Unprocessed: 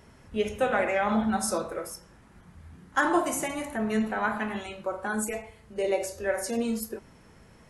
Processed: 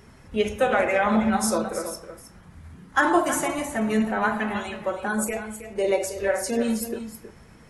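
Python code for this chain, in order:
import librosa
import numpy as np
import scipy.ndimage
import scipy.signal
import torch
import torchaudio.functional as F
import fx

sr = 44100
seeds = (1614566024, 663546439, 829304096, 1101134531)

y = fx.spec_quant(x, sr, step_db=15)
y = y + 10.0 ** (-11.0 / 20.0) * np.pad(y, (int(319 * sr / 1000.0), 0))[:len(y)]
y = y * 10.0 ** (4.5 / 20.0)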